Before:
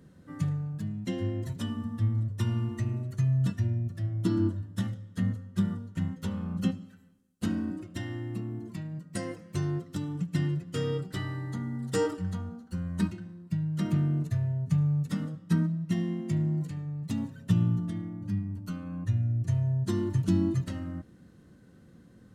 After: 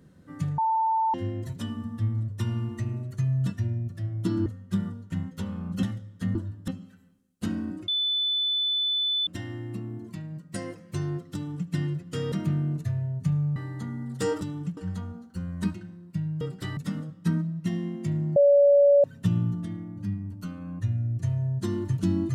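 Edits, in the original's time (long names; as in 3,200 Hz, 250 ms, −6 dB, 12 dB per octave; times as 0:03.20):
0:00.58–0:01.14: beep over 891 Hz −21 dBFS
0:04.46–0:04.79: swap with 0:05.31–0:06.68
0:07.88: insert tone 3,500 Hz −23 dBFS 1.39 s
0:09.95–0:10.31: duplicate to 0:12.14
0:10.93–0:11.29: swap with 0:13.78–0:15.02
0:16.61–0:17.29: beep over 569 Hz −14 dBFS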